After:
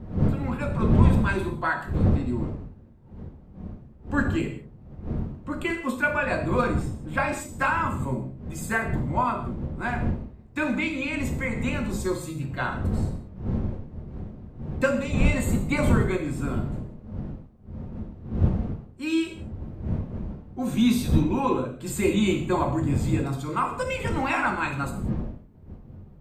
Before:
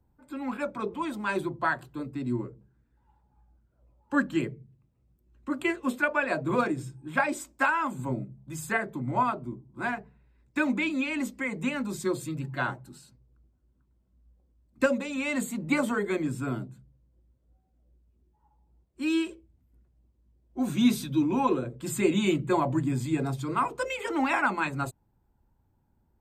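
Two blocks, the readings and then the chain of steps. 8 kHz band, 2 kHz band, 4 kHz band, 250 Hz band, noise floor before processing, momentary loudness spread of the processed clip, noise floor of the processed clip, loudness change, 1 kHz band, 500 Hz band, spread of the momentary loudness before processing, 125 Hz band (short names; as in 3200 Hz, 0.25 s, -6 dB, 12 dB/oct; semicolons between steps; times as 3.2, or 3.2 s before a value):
+1.5 dB, +1.5 dB, +2.0 dB, +3.0 dB, -70 dBFS, 16 LU, -48 dBFS, +2.5 dB, +1.5 dB, +2.5 dB, 10 LU, +11.0 dB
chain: wind noise 170 Hz -31 dBFS; non-linear reverb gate 0.21 s falling, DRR 2.5 dB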